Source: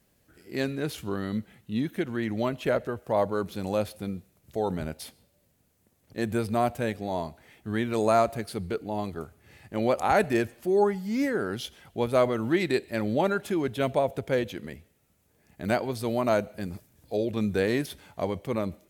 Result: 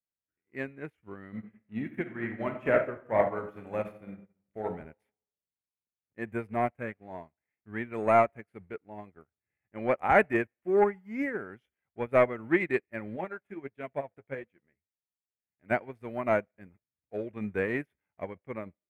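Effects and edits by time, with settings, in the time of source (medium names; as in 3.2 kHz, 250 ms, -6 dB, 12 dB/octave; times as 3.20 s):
1.30–4.67 s: reverb throw, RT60 0.96 s, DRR 2 dB
6.47–7.17 s: loudspeaker Doppler distortion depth 0.15 ms
13.16–15.71 s: flange 1.5 Hz, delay 4 ms, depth 6.7 ms, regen +49%
whole clip: waveshaping leveller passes 1; resonant high shelf 3 kHz -12 dB, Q 3; upward expansion 2.5:1, over -39 dBFS; trim -1.5 dB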